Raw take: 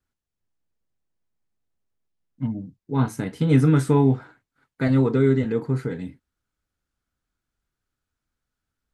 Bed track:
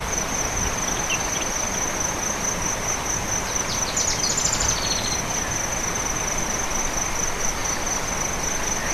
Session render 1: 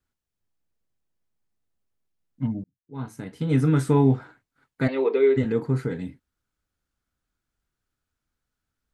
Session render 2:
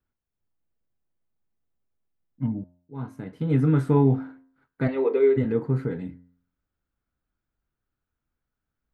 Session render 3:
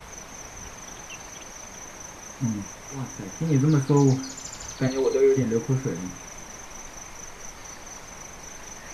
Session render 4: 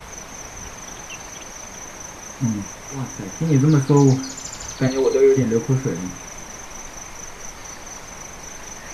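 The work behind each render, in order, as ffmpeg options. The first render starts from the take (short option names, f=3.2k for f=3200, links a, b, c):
-filter_complex "[0:a]asplit=3[a][b][c];[a]afade=t=out:st=4.87:d=0.02[d];[b]highpass=f=380:w=0.5412,highpass=f=380:w=1.3066,equalizer=f=420:t=q:w=4:g=6,equalizer=f=1.4k:t=q:w=4:g=-8,equalizer=f=2.4k:t=q:w=4:g=9,lowpass=f=4.3k:w=0.5412,lowpass=f=4.3k:w=1.3066,afade=t=in:st=4.87:d=0.02,afade=t=out:st=5.36:d=0.02[e];[c]afade=t=in:st=5.36:d=0.02[f];[d][e][f]amix=inputs=3:normalize=0,asplit=2[g][h];[g]atrim=end=2.64,asetpts=PTS-STARTPTS,afade=t=out:st=2.636:d=0.004:c=hsin[i];[h]atrim=start=2.64,asetpts=PTS-STARTPTS,afade=t=in:d=1.48[j];[i][j]concat=n=2:v=0:a=1"
-af "equalizer=f=7.8k:w=0.42:g=-14.5,bandreject=f=88.41:t=h:w=4,bandreject=f=176.82:t=h:w=4,bandreject=f=265.23:t=h:w=4,bandreject=f=353.64:t=h:w=4,bandreject=f=442.05:t=h:w=4,bandreject=f=530.46:t=h:w=4,bandreject=f=618.87:t=h:w=4,bandreject=f=707.28:t=h:w=4,bandreject=f=795.69:t=h:w=4,bandreject=f=884.1:t=h:w=4,bandreject=f=972.51:t=h:w=4,bandreject=f=1.06092k:t=h:w=4,bandreject=f=1.14933k:t=h:w=4,bandreject=f=1.23774k:t=h:w=4,bandreject=f=1.32615k:t=h:w=4,bandreject=f=1.41456k:t=h:w=4,bandreject=f=1.50297k:t=h:w=4,bandreject=f=1.59138k:t=h:w=4,bandreject=f=1.67979k:t=h:w=4,bandreject=f=1.7682k:t=h:w=4,bandreject=f=1.85661k:t=h:w=4,bandreject=f=1.94502k:t=h:w=4,bandreject=f=2.03343k:t=h:w=4"
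-filter_complex "[1:a]volume=-16dB[a];[0:a][a]amix=inputs=2:normalize=0"
-af "volume=5dB"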